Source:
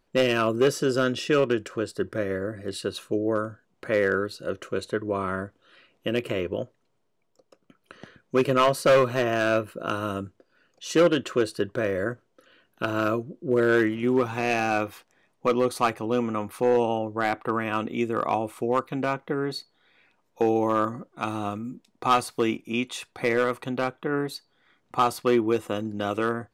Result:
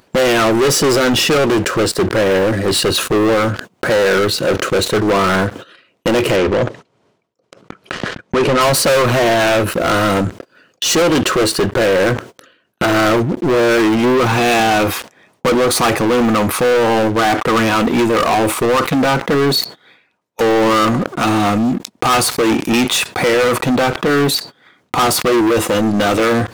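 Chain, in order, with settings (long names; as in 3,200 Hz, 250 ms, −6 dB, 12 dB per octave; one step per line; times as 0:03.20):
high-pass filter 86 Hz 12 dB per octave
noise gate −51 dBFS, range −28 dB
brickwall limiter −15.5 dBFS, peak gain reduction 5 dB
leveller curve on the samples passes 5
upward compression, threshold −24 dBFS
0:06.36–0:08.61: high-frequency loss of the air 60 metres
level that may fall only so fast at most 93 dB per second
level +5.5 dB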